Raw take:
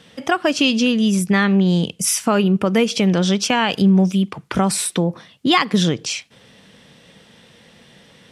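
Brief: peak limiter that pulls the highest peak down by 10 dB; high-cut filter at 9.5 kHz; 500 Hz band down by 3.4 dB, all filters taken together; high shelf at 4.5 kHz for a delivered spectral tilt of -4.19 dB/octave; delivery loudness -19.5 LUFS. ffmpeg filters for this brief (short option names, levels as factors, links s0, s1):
-af "lowpass=9500,equalizer=f=500:t=o:g=-4.5,highshelf=f=4500:g=5,alimiter=limit=0.299:level=0:latency=1"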